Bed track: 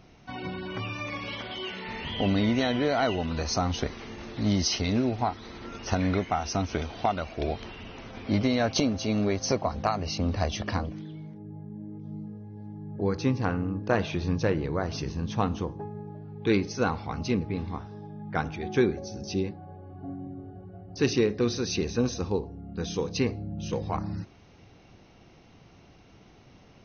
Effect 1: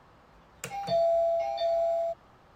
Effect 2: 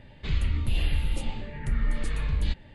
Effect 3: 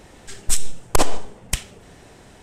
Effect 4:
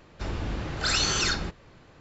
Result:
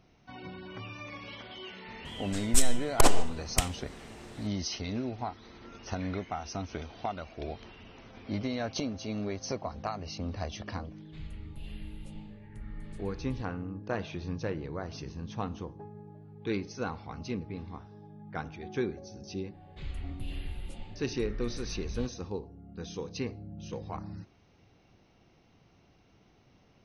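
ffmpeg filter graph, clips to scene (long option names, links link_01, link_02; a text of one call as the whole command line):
ffmpeg -i bed.wav -i cue0.wav -i cue1.wav -i cue2.wav -filter_complex "[2:a]asplit=2[link_01][link_02];[0:a]volume=-8.5dB[link_03];[3:a]atrim=end=2.42,asetpts=PTS-STARTPTS,volume=-4dB,afade=type=in:duration=0.004:curve=hsin,afade=type=out:start_time=2.416:duration=0.004:curve=hsin,adelay=2050[link_04];[link_01]atrim=end=2.74,asetpts=PTS-STARTPTS,volume=-17.5dB,afade=type=in:duration=0.004:curve=hsin,afade=type=out:start_time=2.736:duration=0.004:curve=hsin,adelay=10890[link_05];[link_02]atrim=end=2.74,asetpts=PTS-STARTPTS,volume=-12.5dB,afade=type=in:duration=0.004:curve=hsin,afade=type=out:start_time=2.736:duration=0.004:curve=hsin,adelay=19530[link_06];[link_03][link_04][link_05][link_06]amix=inputs=4:normalize=0" out.wav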